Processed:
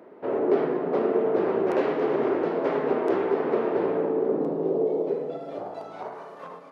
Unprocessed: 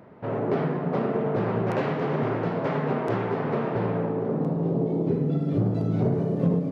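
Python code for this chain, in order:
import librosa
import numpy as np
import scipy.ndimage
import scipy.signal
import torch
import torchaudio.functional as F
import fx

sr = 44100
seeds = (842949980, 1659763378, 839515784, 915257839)

y = fx.filter_sweep_highpass(x, sr, from_hz=350.0, to_hz=1100.0, start_s=4.53, end_s=6.33, q=2.3)
y = y * 10.0 ** (-1.5 / 20.0)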